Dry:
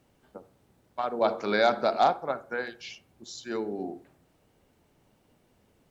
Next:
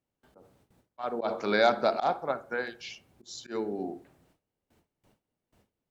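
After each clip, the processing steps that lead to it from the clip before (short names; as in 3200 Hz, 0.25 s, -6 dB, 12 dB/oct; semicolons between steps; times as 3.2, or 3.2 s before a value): gate with hold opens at -54 dBFS; auto swell 0.109 s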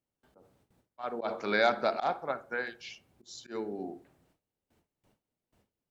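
dynamic EQ 2000 Hz, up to +5 dB, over -43 dBFS, Q 1.1; gain -4 dB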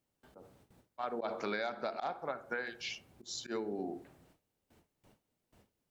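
compressor 8:1, threshold -39 dBFS, peak gain reduction 18 dB; gain +5 dB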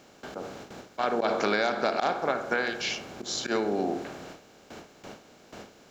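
per-bin compression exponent 0.6; gain +8 dB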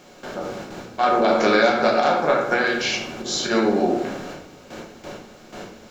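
shoebox room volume 120 m³, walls mixed, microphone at 0.95 m; gain +4.5 dB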